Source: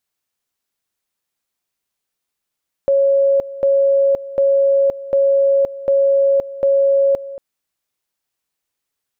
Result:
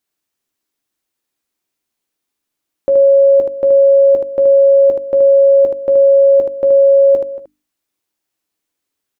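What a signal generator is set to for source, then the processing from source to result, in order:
two-level tone 552 Hz -10.5 dBFS, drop 16.5 dB, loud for 0.52 s, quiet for 0.23 s, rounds 6
peaking EQ 300 Hz +10 dB 0.64 oct; hum notches 50/100/150/200/250/300 Hz; on a send: early reflections 13 ms -9 dB, 76 ms -5.5 dB

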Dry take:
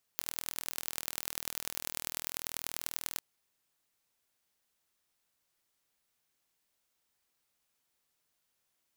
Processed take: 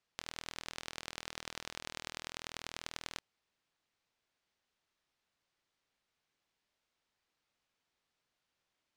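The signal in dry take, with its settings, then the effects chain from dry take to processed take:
pulse train 40.4 per s, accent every 4, -6 dBFS 3.02 s
low-pass 4.6 kHz 12 dB/octave

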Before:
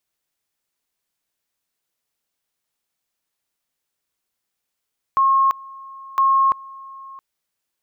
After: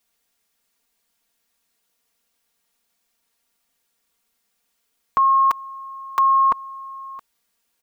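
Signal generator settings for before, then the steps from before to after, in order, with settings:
two-level tone 1.08 kHz -12.5 dBFS, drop 22.5 dB, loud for 0.34 s, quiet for 0.67 s, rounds 2
comb 4.3 ms, depth 73%; in parallel at -0.5 dB: peak limiter -22.5 dBFS

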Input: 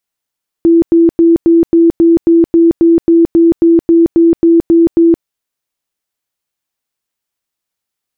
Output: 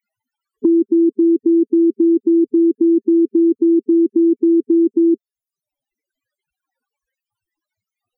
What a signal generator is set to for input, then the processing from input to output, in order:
tone bursts 334 Hz, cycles 57, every 0.27 s, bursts 17, -3.5 dBFS
peak limiter -9 dBFS; loudest bins only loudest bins 8; three bands compressed up and down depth 70%

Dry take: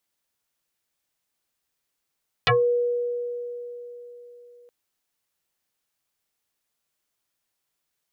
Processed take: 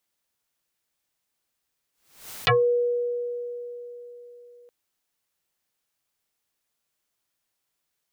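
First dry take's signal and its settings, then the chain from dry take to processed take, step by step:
FM tone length 2.22 s, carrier 483 Hz, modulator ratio 1.25, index 7.3, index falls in 0.18 s exponential, decay 3.89 s, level -15 dB
swell ahead of each attack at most 110 dB/s

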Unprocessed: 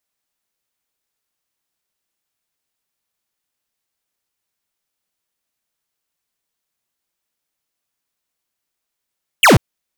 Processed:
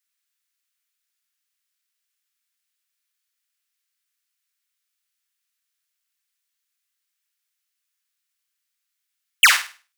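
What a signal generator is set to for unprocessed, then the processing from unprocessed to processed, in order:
laser zap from 3.3 kHz, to 85 Hz, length 0.14 s square, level -8 dB
high-pass 1.4 kHz 24 dB/octave; flutter echo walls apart 8.7 m, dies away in 0.36 s

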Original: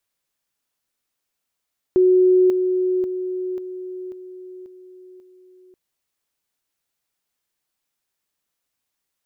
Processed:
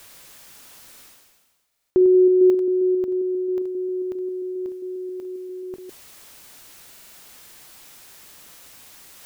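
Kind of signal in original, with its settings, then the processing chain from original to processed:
level ladder 368 Hz -11 dBFS, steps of -6 dB, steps 7, 0.54 s 0.00 s
chunks repeated in reverse 134 ms, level -13 dB; reverse; upward compressor, threshold -20 dBFS; reverse; buffer glitch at 1.67/6.91 s, samples 2048, times 4

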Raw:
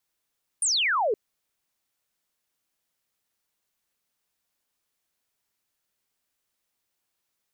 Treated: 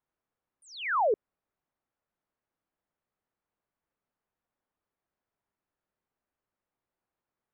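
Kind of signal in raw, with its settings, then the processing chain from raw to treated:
laser zap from 9.7 kHz, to 390 Hz, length 0.52 s sine, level -21 dB
low-pass 1.3 kHz 12 dB/octave

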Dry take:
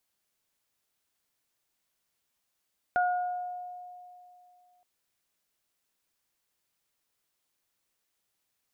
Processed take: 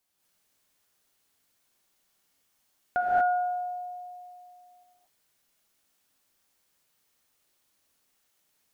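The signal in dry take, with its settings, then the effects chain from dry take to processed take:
additive tone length 1.87 s, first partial 720 Hz, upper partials -4 dB, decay 2.71 s, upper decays 0.89 s, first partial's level -22.5 dB
gated-style reverb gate 260 ms rising, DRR -6 dB

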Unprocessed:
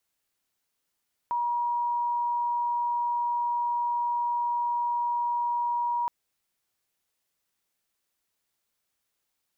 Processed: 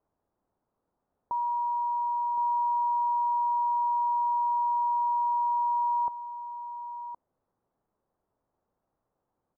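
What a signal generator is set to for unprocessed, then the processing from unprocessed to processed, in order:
tone sine 956 Hz -24.5 dBFS 4.77 s
companding laws mixed up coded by mu; low-pass 1 kHz 24 dB/octave; delay 1066 ms -9.5 dB

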